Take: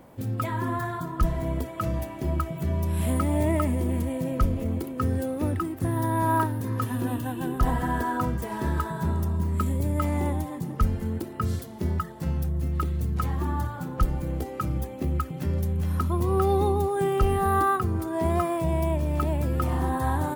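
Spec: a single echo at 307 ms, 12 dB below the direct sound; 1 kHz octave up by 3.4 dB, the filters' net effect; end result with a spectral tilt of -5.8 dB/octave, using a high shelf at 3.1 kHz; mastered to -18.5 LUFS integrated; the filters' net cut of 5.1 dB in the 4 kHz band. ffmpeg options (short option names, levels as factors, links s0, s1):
-af "equalizer=f=1000:t=o:g=5,highshelf=f=3100:g=-5,equalizer=f=4000:t=o:g=-3.5,aecho=1:1:307:0.251,volume=2.37"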